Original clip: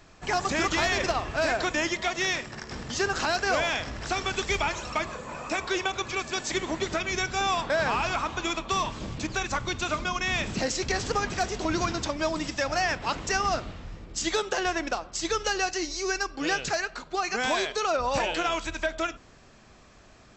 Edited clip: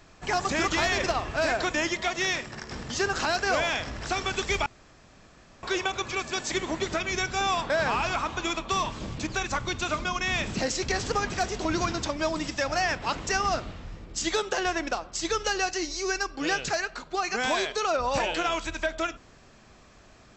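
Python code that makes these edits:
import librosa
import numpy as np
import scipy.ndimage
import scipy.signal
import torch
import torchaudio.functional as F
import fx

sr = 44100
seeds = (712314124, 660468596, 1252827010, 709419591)

y = fx.edit(x, sr, fx.room_tone_fill(start_s=4.66, length_s=0.97), tone=tone)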